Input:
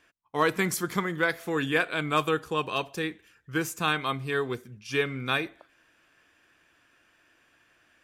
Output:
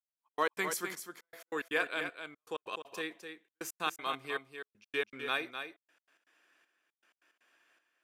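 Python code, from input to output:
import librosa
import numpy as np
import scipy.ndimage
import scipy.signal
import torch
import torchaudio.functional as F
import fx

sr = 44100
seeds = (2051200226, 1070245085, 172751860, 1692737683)

y = scipy.signal.sosfilt(scipy.signal.butter(2, 370.0, 'highpass', fs=sr, output='sos'), x)
y = fx.step_gate(y, sr, bpm=158, pattern='..x.x.xxxx..', floor_db=-60.0, edge_ms=4.5)
y = y + 10.0 ** (-8.0 / 20.0) * np.pad(y, (int(255 * sr / 1000.0), 0))[:len(y)]
y = y * librosa.db_to_amplitude(-6.0)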